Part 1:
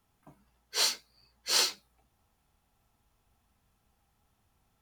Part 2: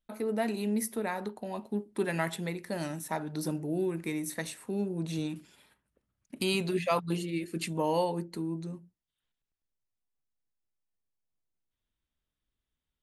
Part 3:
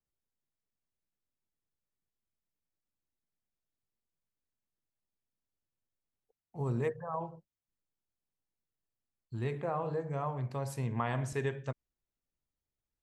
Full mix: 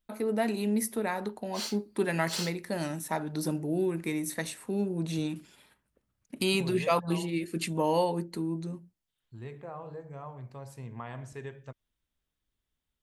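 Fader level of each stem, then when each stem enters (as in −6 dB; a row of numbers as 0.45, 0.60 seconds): −9.5, +2.0, −7.5 decibels; 0.80, 0.00, 0.00 seconds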